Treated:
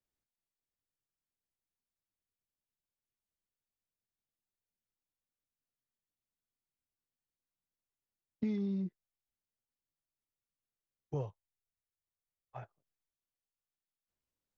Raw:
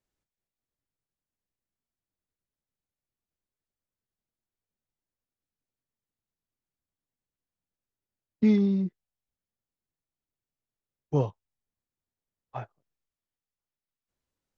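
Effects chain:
0:11.14–0:12.63: octave-band graphic EQ 250/1,000/4,000 Hz −10/−4/−7 dB
downward compressor 10 to 1, threshold −24 dBFS, peak gain reduction 7.5 dB
level −7 dB

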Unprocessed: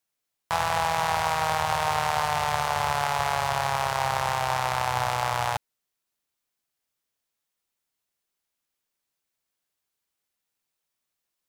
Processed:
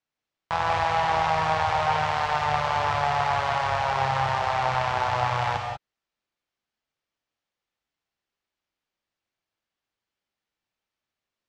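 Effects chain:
high-frequency loss of the air 150 metres
reverb whose tail is shaped and stops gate 210 ms rising, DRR 1.5 dB

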